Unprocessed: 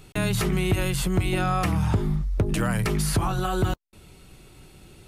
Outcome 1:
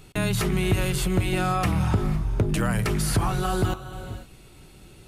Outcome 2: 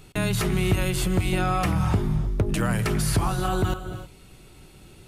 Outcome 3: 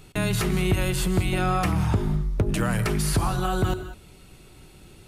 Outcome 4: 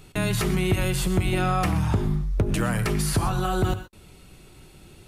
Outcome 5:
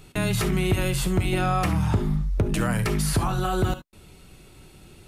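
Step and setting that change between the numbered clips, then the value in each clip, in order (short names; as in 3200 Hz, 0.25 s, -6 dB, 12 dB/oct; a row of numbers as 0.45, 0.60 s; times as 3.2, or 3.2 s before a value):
non-linear reverb, gate: 530, 340, 220, 150, 90 ms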